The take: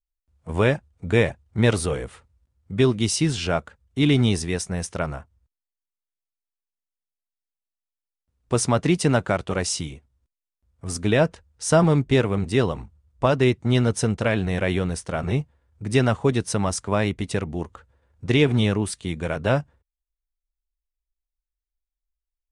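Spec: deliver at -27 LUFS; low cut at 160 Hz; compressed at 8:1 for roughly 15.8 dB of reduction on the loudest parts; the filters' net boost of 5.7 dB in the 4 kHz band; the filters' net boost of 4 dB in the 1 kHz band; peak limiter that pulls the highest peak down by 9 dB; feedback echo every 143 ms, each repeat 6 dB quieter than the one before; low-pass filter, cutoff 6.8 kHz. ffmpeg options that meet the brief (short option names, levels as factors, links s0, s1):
-af "highpass=160,lowpass=6800,equalizer=f=1000:t=o:g=5,equalizer=f=4000:t=o:g=7.5,acompressor=threshold=0.0398:ratio=8,alimiter=limit=0.0794:level=0:latency=1,aecho=1:1:143|286|429|572|715|858:0.501|0.251|0.125|0.0626|0.0313|0.0157,volume=2.37"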